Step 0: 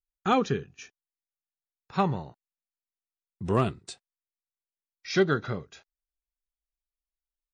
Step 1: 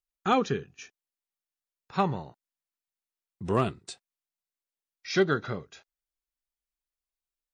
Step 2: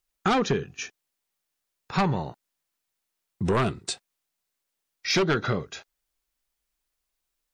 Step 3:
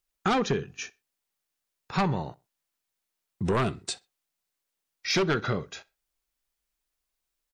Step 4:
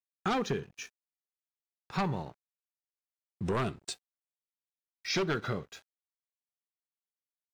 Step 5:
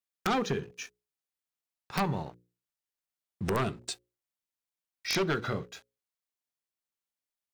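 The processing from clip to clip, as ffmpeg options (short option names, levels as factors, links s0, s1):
-af "lowshelf=f=160:g=-4.5"
-af "aeval=exprs='0.251*sin(PI/2*2.24*val(0)/0.251)':c=same,acompressor=threshold=0.0891:ratio=4"
-filter_complex "[0:a]asplit=2[s0][s1];[s1]adelay=63,lowpass=f=4800:p=1,volume=0.0708,asplit=2[s2][s3];[s3]adelay=63,lowpass=f=4800:p=1,volume=0.27[s4];[s0][s2][s4]amix=inputs=3:normalize=0,volume=0.794"
-af "aeval=exprs='sgn(val(0))*max(abs(val(0))-0.00299,0)':c=same,volume=0.562"
-af "bandreject=f=60:t=h:w=6,bandreject=f=120:t=h:w=6,bandreject=f=180:t=h:w=6,bandreject=f=240:t=h:w=6,bandreject=f=300:t=h:w=6,bandreject=f=360:t=h:w=6,bandreject=f=420:t=h:w=6,bandreject=f=480:t=h:w=6,bandreject=f=540:t=h:w=6,aeval=exprs='(mod(12.6*val(0)+1,2)-1)/12.6':c=same,volume=1.26"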